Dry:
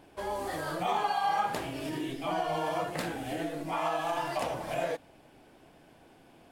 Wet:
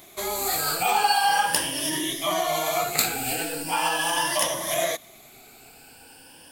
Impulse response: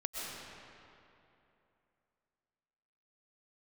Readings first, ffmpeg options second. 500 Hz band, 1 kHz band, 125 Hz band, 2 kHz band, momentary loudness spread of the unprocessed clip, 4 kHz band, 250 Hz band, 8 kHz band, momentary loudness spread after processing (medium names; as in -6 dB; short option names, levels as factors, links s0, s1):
+4.5 dB, +6.5 dB, +1.0 dB, +11.0 dB, 7 LU, +15.5 dB, +2.5 dB, +22.0 dB, 6 LU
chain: -af "afftfilt=real='re*pow(10,12/40*sin(2*PI*(1.2*log(max(b,1)*sr/1024/100)/log(2)-(0.4)*(pts-256)/sr)))':imag='im*pow(10,12/40*sin(2*PI*(1.2*log(max(b,1)*sr/1024/100)/log(2)-(0.4)*(pts-256)/sr)))':win_size=1024:overlap=0.75,crystalizer=i=9:c=0"